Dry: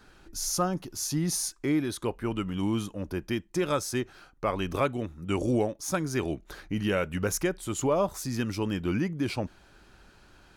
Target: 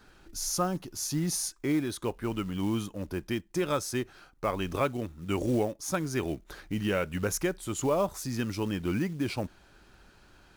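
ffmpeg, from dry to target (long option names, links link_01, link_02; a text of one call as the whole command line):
ffmpeg -i in.wav -af "acrusher=bits=6:mode=log:mix=0:aa=0.000001,volume=-1.5dB" out.wav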